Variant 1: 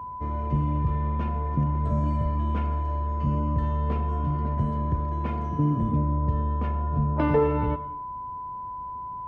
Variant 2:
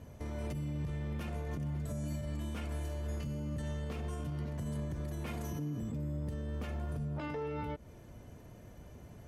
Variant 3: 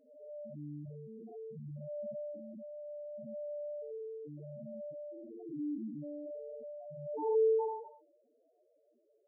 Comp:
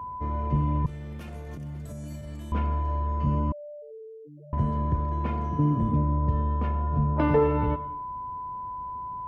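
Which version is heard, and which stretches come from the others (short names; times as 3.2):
1
0.86–2.52 from 2
3.52–4.53 from 3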